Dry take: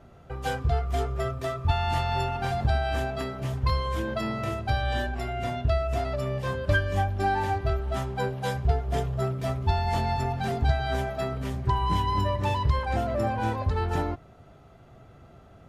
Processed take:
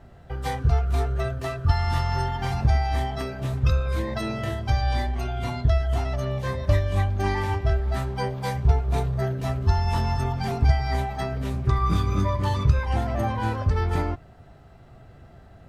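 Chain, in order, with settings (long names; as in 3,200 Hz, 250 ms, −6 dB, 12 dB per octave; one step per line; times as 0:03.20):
low-shelf EQ 90 Hz +8.5 dB
formants moved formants +3 semitones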